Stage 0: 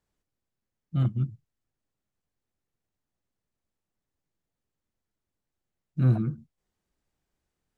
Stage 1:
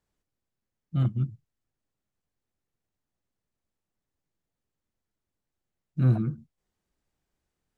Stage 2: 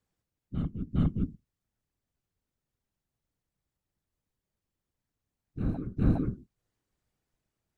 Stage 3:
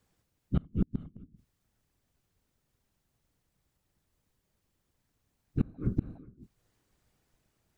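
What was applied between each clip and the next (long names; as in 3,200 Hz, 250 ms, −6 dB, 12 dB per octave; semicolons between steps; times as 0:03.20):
no processing that can be heard
random phases in short frames; backwards echo 410 ms −6 dB; level −2 dB
gate with flip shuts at −23 dBFS, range −30 dB; level +9 dB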